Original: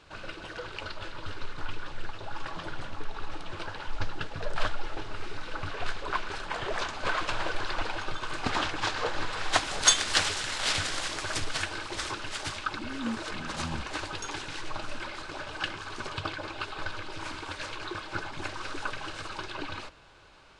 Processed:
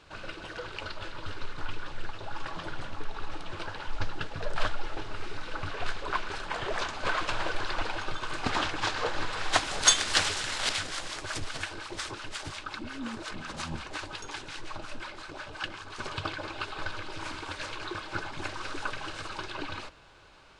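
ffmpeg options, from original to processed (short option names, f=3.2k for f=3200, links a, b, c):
-filter_complex "[0:a]asettb=1/sr,asplit=3[a][b][c];[a]atrim=end=10.694[d];[b]atrim=start=10.69:end=15.99,asetpts=PTS-STARTPTS,afade=t=in:d=0.004:c=qsin,afade=t=out:st=5.296:d=0.004:c=qsin,acrossover=split=720[e][f];[e]aeval=exprs='val(0)*(1-0.7/2+0.7/2*cos(2*PI*5.6*n/s))':c=same[g];[f]aeval=exprs='val(0)*(1-0.7/2-0.7/2*cos(2*PI*5.6*n/s))':c=same[h];[g][h]amix=inputs=2:normalize=0[i];[c]atrim=start=15.986[j];[d][i]acrossfade=d=0.004:c1=hsin:c2=qsin[k];[k][j]acrossfade=d=0.004:c1=qsin:c2=hsin"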